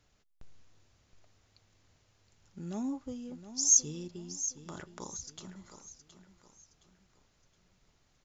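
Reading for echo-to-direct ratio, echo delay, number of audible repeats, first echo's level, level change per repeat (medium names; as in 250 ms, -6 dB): -11.5 dB, 718 ms, 3, -12.0 dB, -8.5 dB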